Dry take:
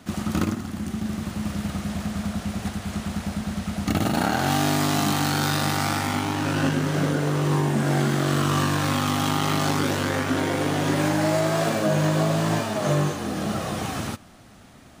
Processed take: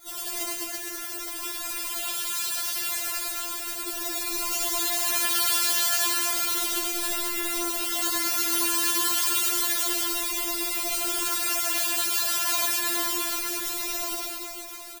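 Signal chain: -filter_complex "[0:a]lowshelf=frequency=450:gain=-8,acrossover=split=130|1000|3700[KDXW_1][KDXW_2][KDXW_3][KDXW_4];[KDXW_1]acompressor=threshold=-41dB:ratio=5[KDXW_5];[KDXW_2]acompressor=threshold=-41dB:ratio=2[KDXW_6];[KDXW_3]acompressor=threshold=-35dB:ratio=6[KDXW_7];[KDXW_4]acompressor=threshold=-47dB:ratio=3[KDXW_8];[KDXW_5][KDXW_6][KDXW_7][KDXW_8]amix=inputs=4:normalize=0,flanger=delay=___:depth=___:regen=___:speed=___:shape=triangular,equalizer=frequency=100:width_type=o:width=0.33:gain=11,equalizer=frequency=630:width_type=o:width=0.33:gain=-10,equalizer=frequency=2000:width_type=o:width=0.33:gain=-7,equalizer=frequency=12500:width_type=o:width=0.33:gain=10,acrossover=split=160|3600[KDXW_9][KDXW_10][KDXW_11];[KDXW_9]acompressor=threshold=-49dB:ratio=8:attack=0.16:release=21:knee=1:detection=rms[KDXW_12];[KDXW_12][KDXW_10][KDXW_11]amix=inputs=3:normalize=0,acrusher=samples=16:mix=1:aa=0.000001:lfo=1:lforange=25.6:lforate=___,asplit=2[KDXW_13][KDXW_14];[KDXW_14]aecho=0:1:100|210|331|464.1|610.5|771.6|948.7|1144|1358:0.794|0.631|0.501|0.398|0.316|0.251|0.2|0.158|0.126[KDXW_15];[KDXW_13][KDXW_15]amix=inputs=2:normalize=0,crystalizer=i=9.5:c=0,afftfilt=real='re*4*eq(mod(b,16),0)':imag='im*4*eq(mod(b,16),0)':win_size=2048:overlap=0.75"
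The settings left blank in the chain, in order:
8.4, 6.5, -43, 0.5, 0.31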